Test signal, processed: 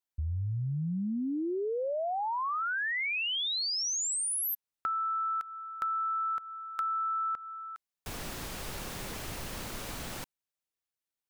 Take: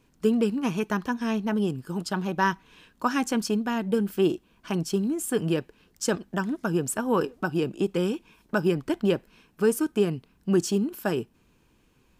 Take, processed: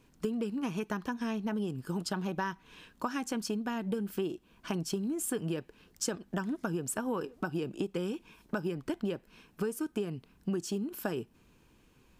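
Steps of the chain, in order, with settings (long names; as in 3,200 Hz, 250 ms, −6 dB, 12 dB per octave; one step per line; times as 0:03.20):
downward compressor 10 to 1, threshold −30 dBFS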